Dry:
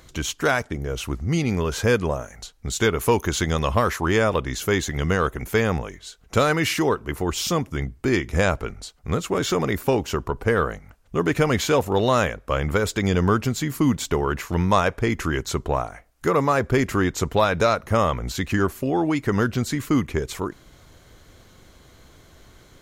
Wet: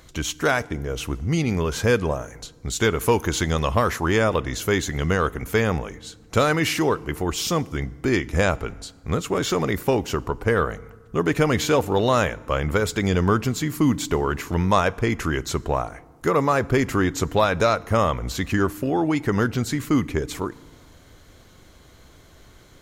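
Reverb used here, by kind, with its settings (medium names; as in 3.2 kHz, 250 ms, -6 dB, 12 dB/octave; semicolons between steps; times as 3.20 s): FDN reverb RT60 1.5 s, low-frequency decay 1.55×, high-frequency decay 0.7×, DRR 20 dB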